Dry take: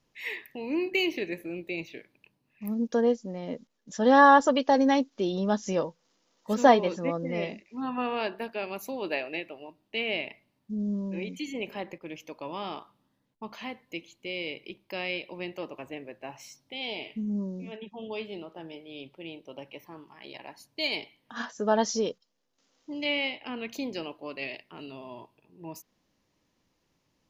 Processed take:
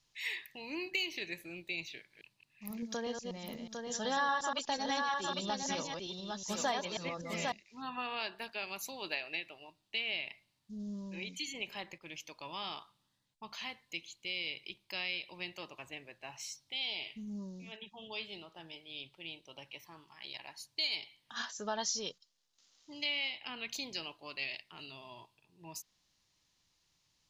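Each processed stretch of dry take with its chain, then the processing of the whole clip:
1.97–7.52 reverse delay 0.122 s, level -5.5 dB + echo 0.803 s -6 dB
whole clip: graphic EQ 250/500/4000/8000 Hz -9/-8/+8/+8 dB; compressor 2.5:1, threshold -30 dBFS; gain -4 dB

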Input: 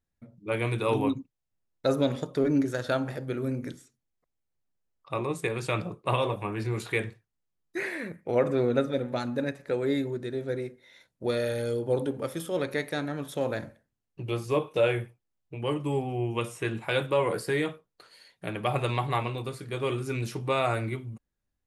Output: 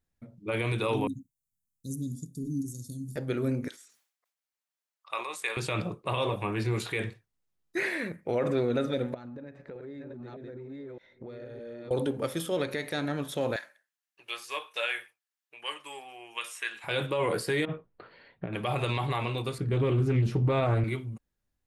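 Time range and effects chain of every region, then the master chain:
1.07–3.16 inverse Chebyshev band-stop 850–2000 Hz, stop band 80 dB + tilt +1.5 dB/oct
3.68–5.57 HPF 1000 Hz + sustainer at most 110 dB/s
9.14–11.91 reverse delay 0.614 s, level -0.5 dB + compressor 16:1, threshold -39 dBFS + tape spacing loss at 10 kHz 26 dB
13.56–16.84 HPF 1300 Hz + bell 1700 Hz +5 dB 0.23 oct
17.65–18.53 low shelf 330 Hz +6.5 dB + negative-ratio compressor -36 dBFS + Gaussian blur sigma 3.2 samples
19.58–20.84 tilt -3.5 dB/oct + Doppler distortion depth 0.27 ms
whole clip: dynamic EQ 3400 Hz, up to +4 dB, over -48 dBFS, Q 1.1; limiter -20.5 dBFS; gain +1.5 dB

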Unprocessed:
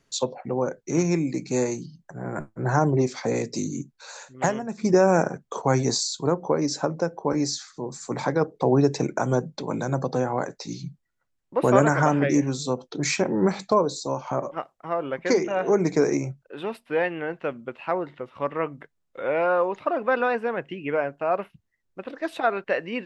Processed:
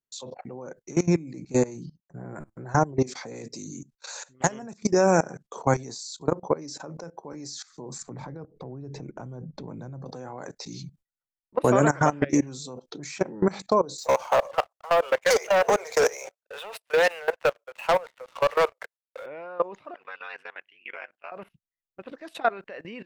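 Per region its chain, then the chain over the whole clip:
1.06–2.35 expander -40 dBFS + tilt -1.5 dB/oct
3.59–5.48 LPF 7500 Hz + high shelf 5100 Hz +8.5 dB
8.02–10.06 RIAA curve playback + compressor 2.5:1, threshold -31 dBFS
13.98–19.26 steep high-pass 460 Hz 72 dB/oct + sample leveller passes 3
19.94–21.32 tilt +2 dB/oct + ring modulator 47 Hz + band-pass 2500 Hz, Q 1.2
whole clip: gate with hold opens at -37 dBFS; high shelf 6100 Hz +5 dB; level quantiser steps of 20 dB; gain +1.5 dB

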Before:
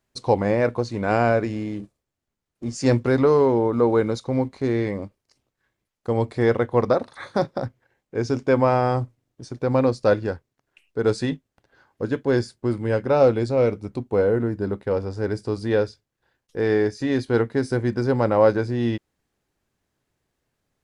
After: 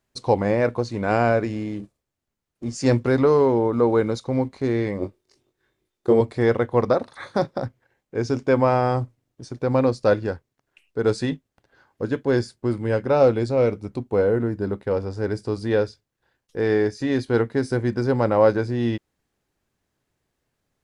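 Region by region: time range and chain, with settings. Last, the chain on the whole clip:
5–6.21 doubler 22 ms -4 dB + small resonant body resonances 370/3600 Hz, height 14 dB
whole clip: dry

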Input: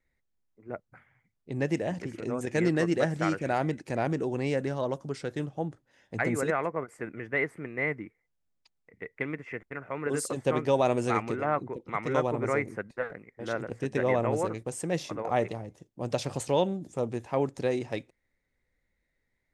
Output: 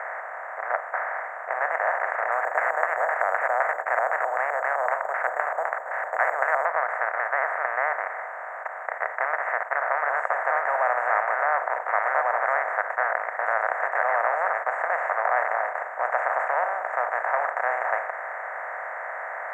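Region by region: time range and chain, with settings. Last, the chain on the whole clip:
2.32–6.65 LFO low-pass square 3.9 Hz 490–2500 Hz + careless resampling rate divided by 6×, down filtered, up zero stuff
whole clip: per-bin compression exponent 0.2; elliptic band-pass 680–1800 Hz, stop band 50 dB

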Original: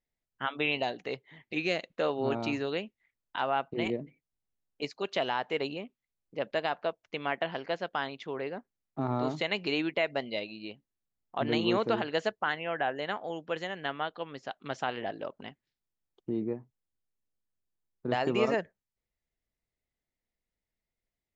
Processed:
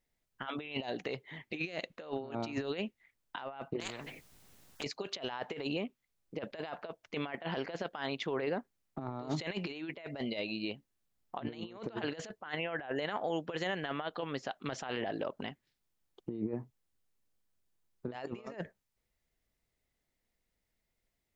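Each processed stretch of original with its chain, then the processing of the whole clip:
3.8–4.84 compressor 8:1, threshold -40 dBFS + spectral compressor 4:1
whole clip: negative-ratio compressor -36 dBFS, ratio -0.5; limiter -25.5 dBFS; gain +1 dB

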